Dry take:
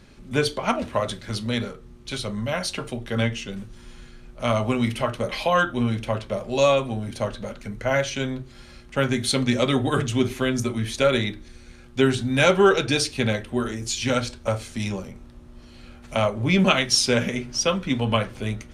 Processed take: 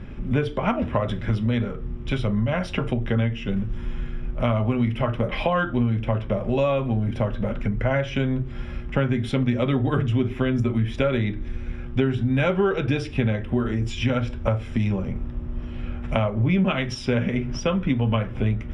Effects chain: low shelf 240 Hz +10.5 dB; compressor 4:1, threshold -27 dBFS, peak gain reduction 15.5 dB; polynomial smoothing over 25 samples; gain +6.5 dB

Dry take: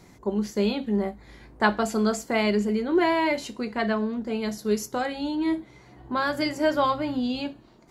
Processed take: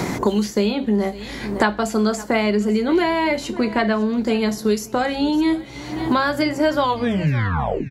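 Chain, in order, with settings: tape stop at the end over 1.08 s; echo 0.553 s -23 dB; three-band squash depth 100%; gain +5 dB

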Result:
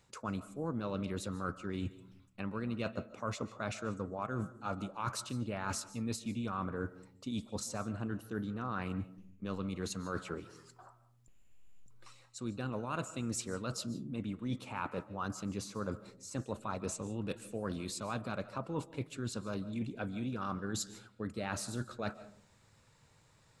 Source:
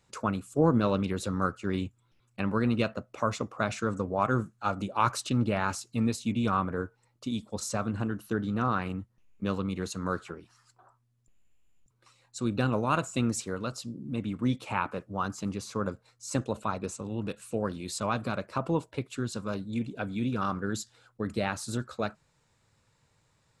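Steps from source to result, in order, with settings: reverse; compressor 6:1, threshold -38 dBFS, peak gain reduction 19 dB; reverse; digital reverb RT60 0.54 s, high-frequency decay 0.3×, pre-delay 0.105 s, DRR 15.5 dB; gain +3 dB

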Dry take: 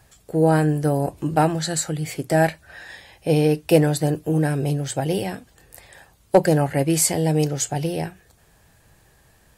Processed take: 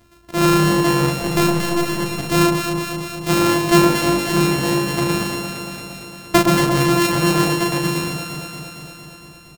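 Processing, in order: sample sorter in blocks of 128 samples; doubler 37 ms -4 dB; 1.12–1.89 backlash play -22.5 dBFS; on a send: echo with dull and thin repeats by turns 0.115 s, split 1200 Hz, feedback 83%, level -4 dB

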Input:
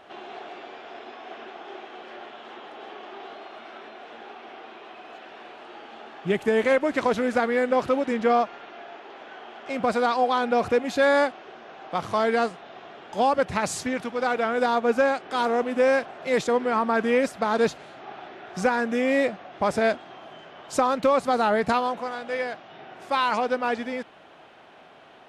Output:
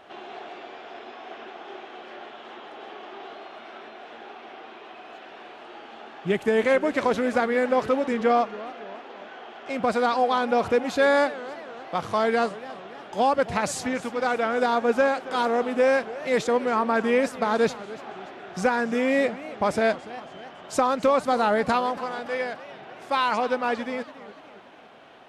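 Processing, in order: warbling echo 0.283 s, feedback 53%, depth 213 cents, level -17 dB

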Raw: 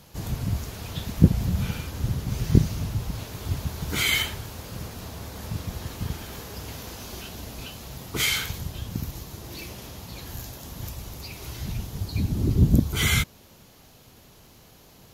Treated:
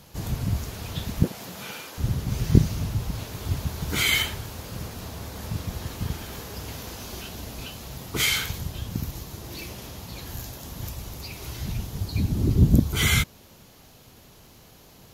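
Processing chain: 1.23–1.98 HPF 420 Hz 12 dB/oct; gain +1 dB

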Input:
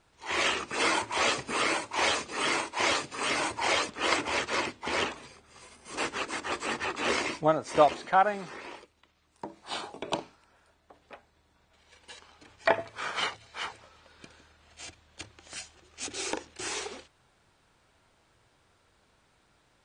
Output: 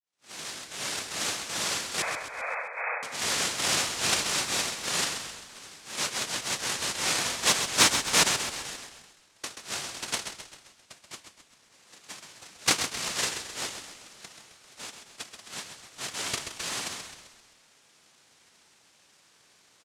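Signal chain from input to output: opening faded in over 2.43 s; in parallel at -1.5 dB: compressor, threshold -44 dBFS, peak gain reduction 25.5 dB; on the sum: noise vocoder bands 1; soft clip -9.5 dBFS, distortion -21 dB; 2.02–3.03 brick-wall FIR band-pass 450–2600 Hz; frequency-shifting echo 0.131 s, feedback 50%, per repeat -34 Hz, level -8 dB

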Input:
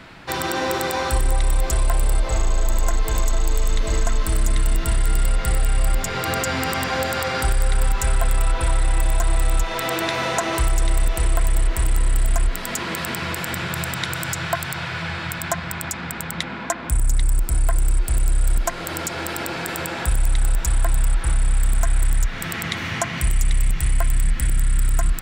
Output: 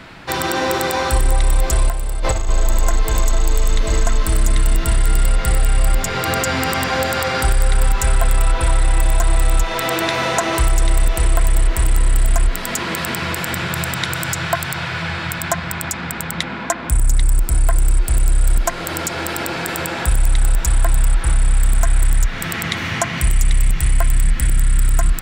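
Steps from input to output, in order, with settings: 1.89–2.49 negative-ratio compressor -22 dBFS, ratio -1; gain +4 dB

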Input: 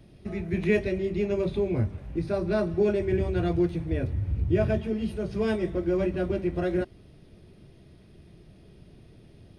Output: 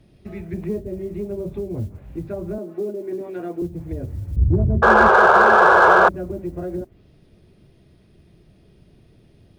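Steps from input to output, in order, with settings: 2.58–3.62 HPF 230 Hz 24 dB/oct; treble ducked by the level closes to 470 Hz, closed at -21.5 dBFS; modulation noise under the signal 33 dB; 4.36–5.09 tilt -3.5 dB/oct; 4.82–6.09 painted sound noise 350–1700 Hz -9 dBFS; in parallel at -4 dB: soft clip -14.5 dBFS, distortion -6 dB; on the sum: gain -5 dB

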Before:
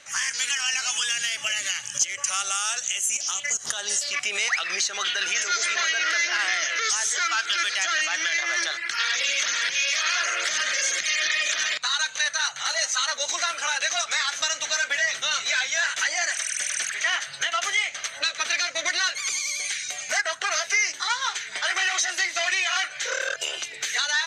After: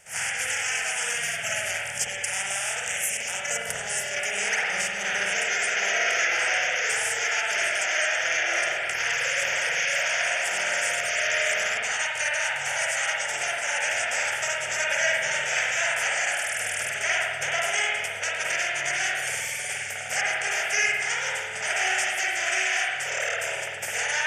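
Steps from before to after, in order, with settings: spectral limiter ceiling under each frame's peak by 21 dB; fixed phaser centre 1100 Hz, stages 6; spring tank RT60 1.3 s, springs 50 ms, chirp 65 ms, DRR -4 dB

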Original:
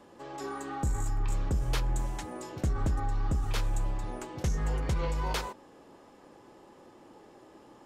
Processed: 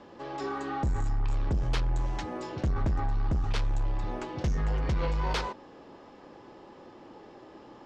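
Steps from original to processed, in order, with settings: LPF 5500 Hz 24 dB/oct; soft clip -27 dBFS, distortion -17 dB; gain +4.5 dB

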